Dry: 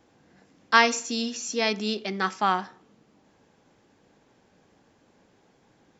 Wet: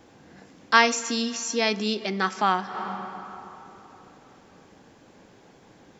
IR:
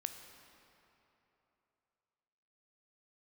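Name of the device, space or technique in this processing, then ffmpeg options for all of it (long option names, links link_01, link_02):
ducked reverb: -filter_complex "[0:a]asplit=3[link_01][link_02][link_03];[1:a]atrim=start_sample=2205[link_04];[link_02][link_04]afir=irnorm=-1:irlink=0[link_05];[link_03]apad=whole_len=264468[link_06];[link_05][link_06]sidechaincompress=threshold=-48dB:ratio=4:attack=30:release=116,volume=6dB[link_07];[link_01][link_07]amix=inputs=2:normalize=0"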